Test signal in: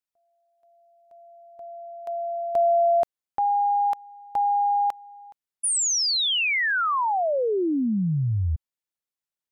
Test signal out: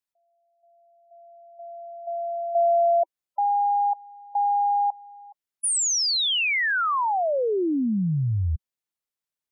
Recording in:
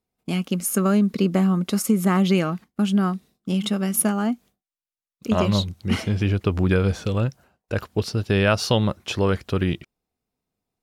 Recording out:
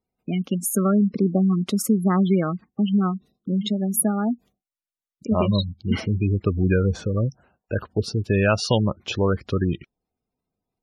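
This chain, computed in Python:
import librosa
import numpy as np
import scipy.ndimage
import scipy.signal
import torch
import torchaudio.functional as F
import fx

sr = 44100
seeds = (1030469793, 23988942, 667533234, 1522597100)

y = fx.spec_gate(x, sr, threshold_db=-20, keep='strong')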